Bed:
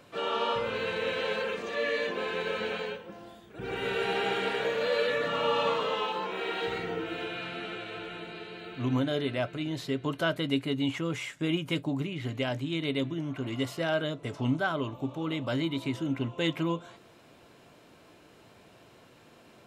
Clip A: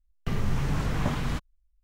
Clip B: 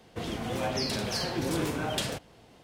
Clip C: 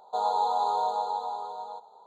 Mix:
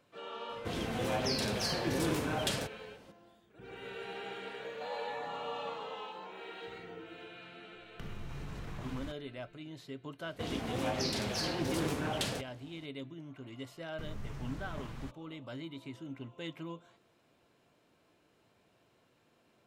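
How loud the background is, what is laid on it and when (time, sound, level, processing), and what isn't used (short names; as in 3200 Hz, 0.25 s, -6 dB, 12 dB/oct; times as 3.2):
bed -13.5 dB
0.49 add B -2.5 dB
4.67 add C -17 dB
7.73 add A -4.5 dB + compressor 3:1, threshold -38 dBFS
10.23 add B -3.5 dB + Doppler distortion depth 0.29 ms
13.72 add A -16 dB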